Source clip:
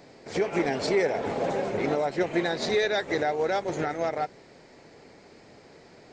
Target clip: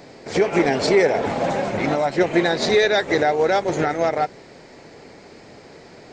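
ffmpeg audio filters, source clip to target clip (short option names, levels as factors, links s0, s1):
-filter_complex "[0:a]asettb=1/sr,asplit=3[s0][s1][s2];[s0]atrim=end=1.264[s3];[s1]atrim=start=1.26:end=2.13,asetpts=PTS-STARTPTS,afade=t=in:d=0.004:c=qsin,afade=t=out:st=0.866:d=0.004:c=qsin,equalizer=f=420:t=o:w=0.4:g=-10.5[s4];[s2]atrim=start=2.126[s5];[s3][s4]acrossfade=d=0.004:c1=hsin:c2=qsin[s6];[s6][s5]acrossfade=d=0.004:c1=qsin:c2=hsin,volume=2.51"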